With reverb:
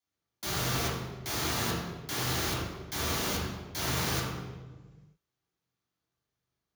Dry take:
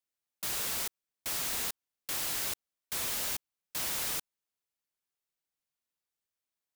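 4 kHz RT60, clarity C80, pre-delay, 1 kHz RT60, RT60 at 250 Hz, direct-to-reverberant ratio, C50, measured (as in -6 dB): 0.95 s, 2.0 dB, 3 ms, 1.2 s, 1.9 s, -7.5 dB, -0.5 dB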